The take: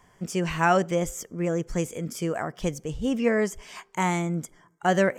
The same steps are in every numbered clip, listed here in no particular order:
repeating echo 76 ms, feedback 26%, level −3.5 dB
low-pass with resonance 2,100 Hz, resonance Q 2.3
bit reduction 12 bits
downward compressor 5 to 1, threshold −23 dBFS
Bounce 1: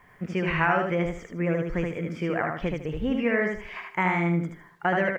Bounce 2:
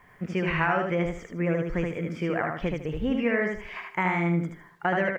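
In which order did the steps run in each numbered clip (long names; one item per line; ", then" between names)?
downward compressor, then low-pass with resonance, then bit reduction, then repeating echo
low-pass with resonance, then bit reduction, then downward compressor, then repeating echo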